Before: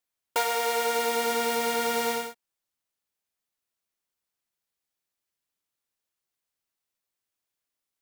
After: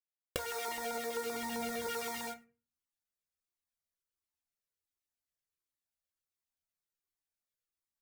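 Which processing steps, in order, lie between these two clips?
recorder AGC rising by 50 dB/s; 0.68–1.87 low shelf 280 Hz +12 dB; LFO notch square 7.7 Hz 910–2900 Hz; gate -48 dBFS, range -35 dB; reverb RT60 0.40 s, pre-delay 5 ms, DRR 7 dB; compressor, threshold -30 dBFS, peak gain reduction 12 dB; bell 74 Hz +8.5 dB 0.23 oct; cascading flanger falling 1.4 Hz

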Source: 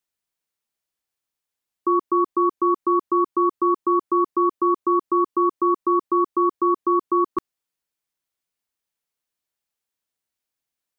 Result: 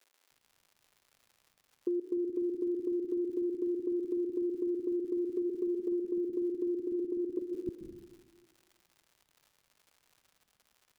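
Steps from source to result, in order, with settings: Chebyshev low-pass 570 Hz, order 8; crackle 170/s -52 dBFS; 5.33–5.88 comb 4.9 ms, depth 68%; 6.82–7.33 level quantiser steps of 13 dB; bands offset in time highs, lows 0.3 s, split 280 Hz; reverb RT60 1.6 s, pre-delay 0.12 s, DRR 8.5 dB; compressor 6:1, threshold -32 dBFS, peak gain reduction 9.5 dB; gain +1.5 dB

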